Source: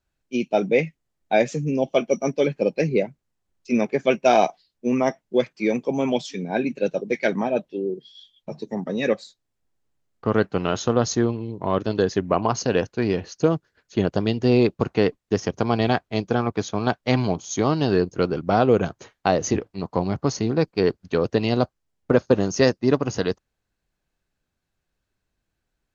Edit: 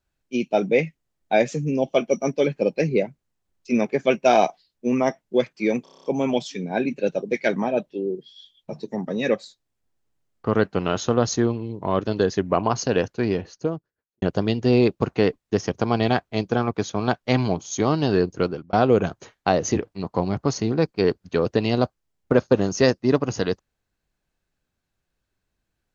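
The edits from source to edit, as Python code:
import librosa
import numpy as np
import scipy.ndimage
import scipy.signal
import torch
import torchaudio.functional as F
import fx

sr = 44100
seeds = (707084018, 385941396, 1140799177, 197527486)

y = fx.studio_fade_out(x, sr, start_s=12.93, length_s=1.08)
y = fx.edit(y, sr, fx.stutter(start_s=5.83, slice_s=0.03, count=8),
    fx.fade_out_span(start_s=18.19, length_s=0.33), tone=tone)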